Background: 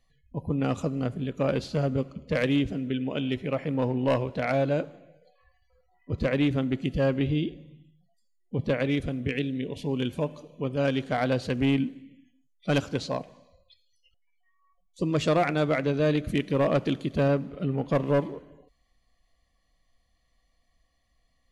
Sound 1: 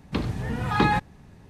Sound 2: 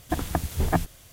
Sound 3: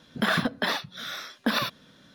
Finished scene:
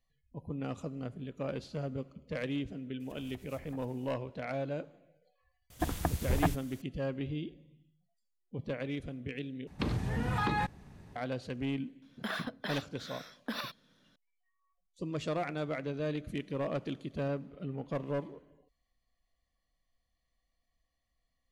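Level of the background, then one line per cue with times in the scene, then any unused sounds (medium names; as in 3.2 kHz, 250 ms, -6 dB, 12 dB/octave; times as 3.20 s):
background -11 dB
3.00 s: add 2 -16.5 dB + compression, threshold -34 dBFS
5.70 s: add 2 -5.5 dB
9.67 s: replace with 1 -3.5 dB + compression, threshold -23 dBFS
12.02 s: add 3 -12.5 dB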